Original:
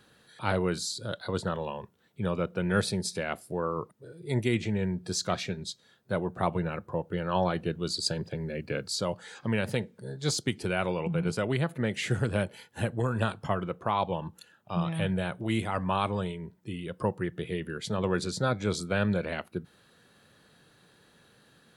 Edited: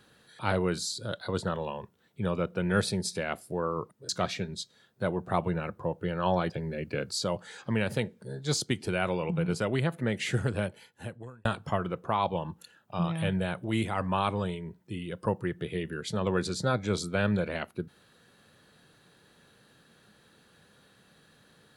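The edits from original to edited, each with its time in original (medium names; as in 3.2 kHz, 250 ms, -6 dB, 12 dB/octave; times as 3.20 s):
4.09–5.18 s: delete
7.59–8.27 s: delete
12.11–13.22 s: fade out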